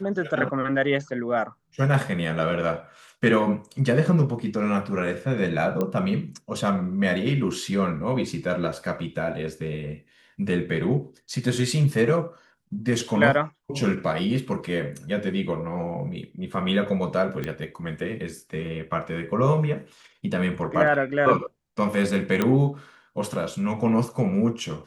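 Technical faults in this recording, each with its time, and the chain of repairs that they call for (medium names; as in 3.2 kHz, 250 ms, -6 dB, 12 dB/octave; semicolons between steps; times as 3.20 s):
5.81 s: pop -14 dBFS
17.44 s: pop -17 dBFS
22.42 s: pop -9 dBFS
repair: de-click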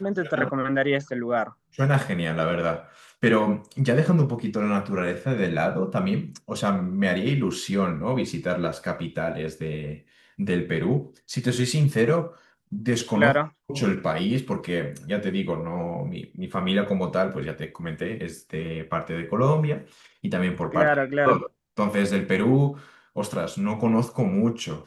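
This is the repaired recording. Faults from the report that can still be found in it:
nothing left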